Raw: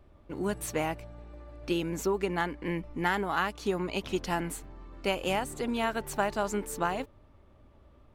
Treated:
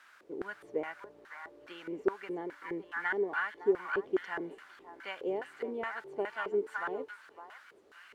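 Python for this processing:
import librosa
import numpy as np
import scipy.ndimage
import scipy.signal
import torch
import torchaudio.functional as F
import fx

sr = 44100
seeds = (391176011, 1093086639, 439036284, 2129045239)

p1 = fx.peak_eq(x, sr, hz=2200.0, db=2.5, octaves=0.77)
p2 = fx.notch(p1, sr, hz=1600.0, q=8.5)
p3 = fx.notch_comb(p2, sr, f0_hz=1300.0)
p4 = fx.quant_dither(p3, sr, seeds[0], bits=8, dither='triangular')
p5 = p4 + fx.echo_stepped(p4, sr, ms=560, hz=1300.0, octaves=1.4, feedback_pct=70, wet_db=-0.5, dry=0)
p6 = fx.filter_lfo_bandpass(p5, sr, shape='square', hz=2.4, low_hz=410.0, high_hz=1500.0, q=5.0)
y = F.gain(torch.from_numpy(p6), 5.0).numpy()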